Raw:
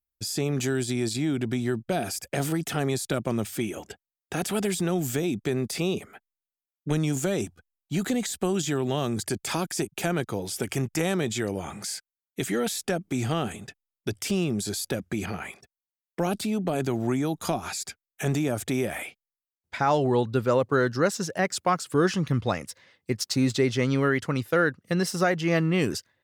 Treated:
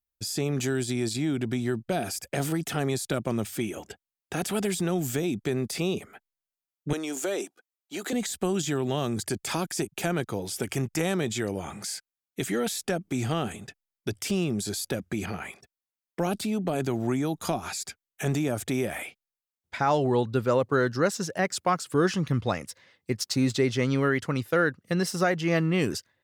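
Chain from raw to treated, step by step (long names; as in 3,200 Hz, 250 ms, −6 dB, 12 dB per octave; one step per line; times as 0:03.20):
0:06.93–0:08.13: high-pass filter 310 Hz 24 dB per octave
level −1 dB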